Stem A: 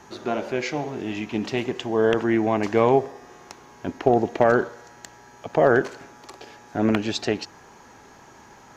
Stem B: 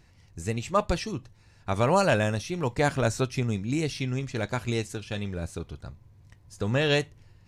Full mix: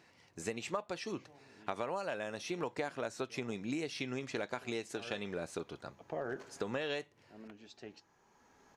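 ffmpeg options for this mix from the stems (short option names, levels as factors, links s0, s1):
-filter_complex "[0:a]flanger=delay=4.1:depth=2.1:regen=-71:speed=1:shape=triangular,adelay=550,volume=0.316[s0];[1:a]highpass=310,highshelf=f=6000:g=-9.5,volume=1.26,asplit=2[s1][s2];[s2]apad=whole_len=410985[s3];[s0][s3]sidechaincompress=threshold=0.01:ratio=16:attack=10:release=1220[s4];[s4][s1]amix=inputs=2:normalize=0,acompressor=threshold=0.02:ratio=12"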